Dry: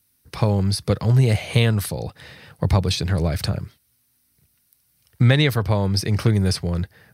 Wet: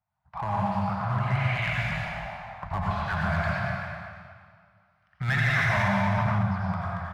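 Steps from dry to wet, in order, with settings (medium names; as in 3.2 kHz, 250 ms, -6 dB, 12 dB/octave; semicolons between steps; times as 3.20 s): 1.66–2.73 s: cycle switcher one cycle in 2, muted; treble shelf 2.6 kHz +11 dB; peak limiter -9 dBFS, peak gain reduction 10.5 dB; overdrive pedal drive 11 dB, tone 1.4 kHz, clips at -9 dBFS; LFO low-pass saw up 0.51 Hz 760–2400 Hz; elliptic band-stop 190–660 Hz, stop band 40 dB; one-sided clip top -18.5 dBFS; speakerphone echo 230 ms, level -7 dB; reverberation RT60 2.0 s, pre-delay 78 ms, DRR -5 dB; 5.28–6.46 s: level flattener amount 70%; trim -7.5 dB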